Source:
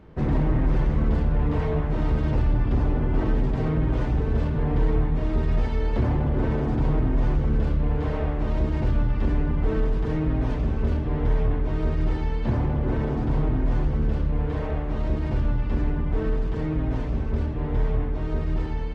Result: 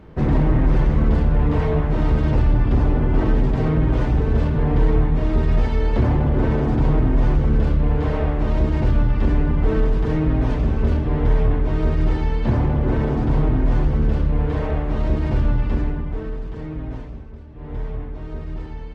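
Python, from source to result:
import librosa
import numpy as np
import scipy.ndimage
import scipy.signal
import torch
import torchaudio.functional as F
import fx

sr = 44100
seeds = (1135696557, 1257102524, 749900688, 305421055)

y = fx.gain(x, sr, db=fx.line((15.65, 5.0), (16.28, -4.0), (16.94, -4.0), (17.45, -15.5), (17.71, -4.5)))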